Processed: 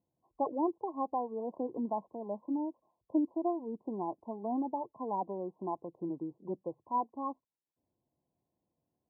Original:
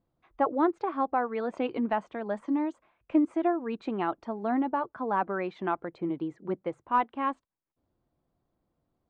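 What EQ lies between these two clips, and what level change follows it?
HPF 93 Hz 12 dB/oct; brick-wall FIR low-pass 1100 Hz; -6.0 dB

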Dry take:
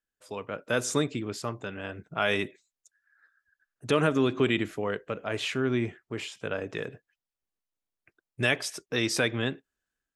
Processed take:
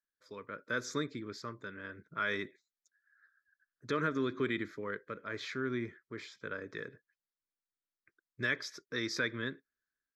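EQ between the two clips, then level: low shelf 220 Hz -11.5 dB; high shelf 5900 Hz -10.5 dB; fixed phaser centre 2800 Hz, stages 6; -2.5 dB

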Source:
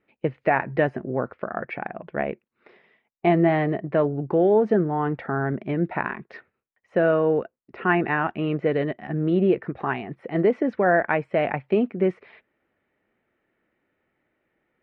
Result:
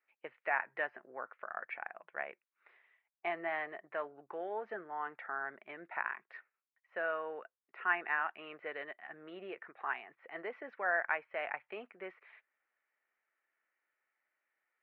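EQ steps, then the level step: HPF 1300 Hz 12 dB/oct; LPF 2100 Hz 12 dB/oct; -4.5 dB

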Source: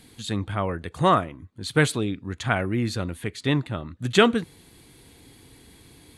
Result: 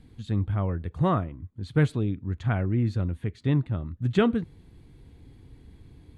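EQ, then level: RIAA curve playback; -8.5 dB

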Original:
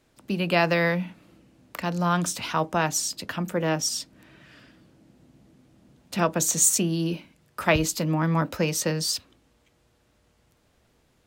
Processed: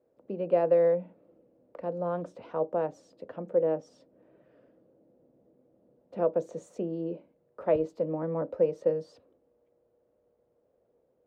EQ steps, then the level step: band-pass 510 Hz, Q 4.5; tilt -2 dB/oct; +3.0 dB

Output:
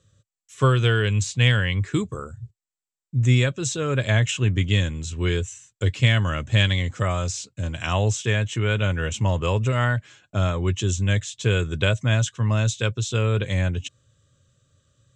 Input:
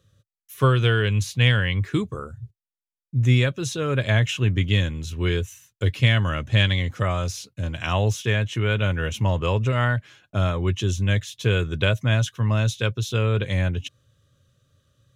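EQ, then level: synth low-pass 7700 Hz, resonance Q 8.7; air absorption 68 m; 0.0 dB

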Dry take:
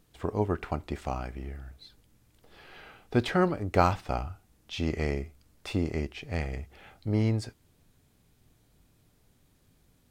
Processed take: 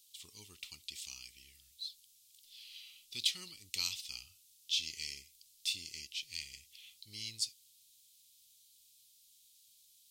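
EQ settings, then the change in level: inverse Chebyshev high-pass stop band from 1700 Hz, stop band 40 dB; +9.5 dB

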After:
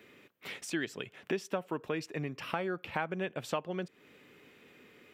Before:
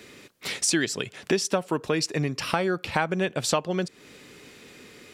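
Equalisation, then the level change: low shelf 68 Hz -11.5 dB; band shelf 6600 Hz -11 dB; -9.0 dB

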